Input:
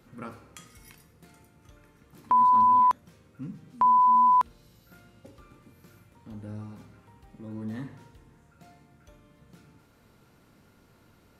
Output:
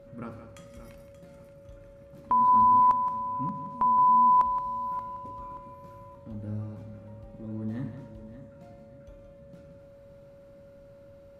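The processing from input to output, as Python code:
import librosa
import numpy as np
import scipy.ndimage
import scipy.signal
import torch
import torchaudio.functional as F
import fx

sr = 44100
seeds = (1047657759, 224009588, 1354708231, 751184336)

y = fx.tilt_eq(x, sr, slope=-2.0)
y = y + 10.0 ** (-10.5 / 20.0) * np.pad(y, (int(172 * sr / 1000.0), 0))[:len(y)]
y = y + 10.0 ** (-47.0 / 20.0) * np.sin(2.0 * np.pi * 560.0 * np.arange(len(y)) / sr)
y = fx.echo_feedback(y, sr, ms=579, feedback_pct=34, wet_db=-13)
y = y * 10.0 ** (-2.5 / 20.0)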